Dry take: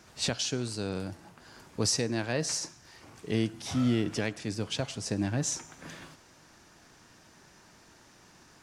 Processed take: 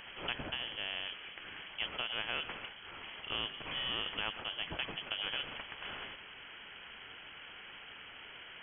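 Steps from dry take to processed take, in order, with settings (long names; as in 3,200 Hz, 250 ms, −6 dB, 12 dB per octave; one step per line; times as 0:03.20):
voice inversion scrambler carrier 3,200 Hz
every bin compressed towards the loudest bin 2 to 1
level −4 dB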